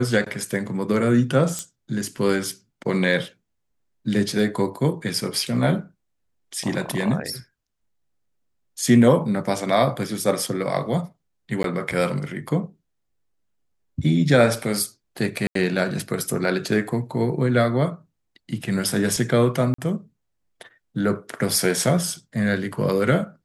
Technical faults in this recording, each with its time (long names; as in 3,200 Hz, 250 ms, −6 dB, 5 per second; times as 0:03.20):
0:01.59: click −14 dBFS
0:11.63–0:11.64: drop-out 12 ms
0:15.47–0:15.55: drop-out 83 ms
0:19.74–0:19.78: drop-out 44 ms